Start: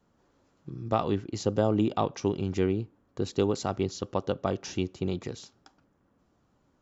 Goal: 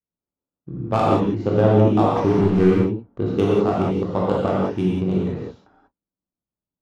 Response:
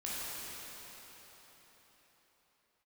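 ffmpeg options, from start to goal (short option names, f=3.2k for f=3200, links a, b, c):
-filter_complex "[0:a]asettb=1/sr,asplit=3[a][b][c];[a]atrim=end=2.164[d];[b]atrim=start=2.16:end=2.7,asetpts=PTS-STARTPTS,afade=t=in:d=0.004:c=qsin,afade=t=out:st=0.536:d=0.004:c=qsin,aeval=exprs='val(0)+0.5*0.0299*sgn(val(0))':c=same[e];[c]atrim=start=2.696[f];[d][e]acrossfade=d=0.004:c1=hsin:c2=qsin[g];[g][f]acrossfade=d=0.004:c1=qsin:c2=hsin,agate=range=-34dB:threshold=-56dB:ratio=16:detection=peak,adynamicsmooth=sensitivity=2.5:basefreq=1.2k[h];[1:a]atrim=start_sample=2205,afade=t=out:st=0.22:d=0.01,atrim=end_sample=10143,asetrate=37485,aresample=44100[i];[h][i]afir=irnorm=-1:irlink=0,adynamicequalizer=threshold=0.00631:dfrequency=1500:dqfactor=0.7:tfrequency=1500:tqfactor=0.7:attack=5:release=100:ratio=0.375:range=2.5:mode=cutabove:tftype=highshelf,volume=9dB"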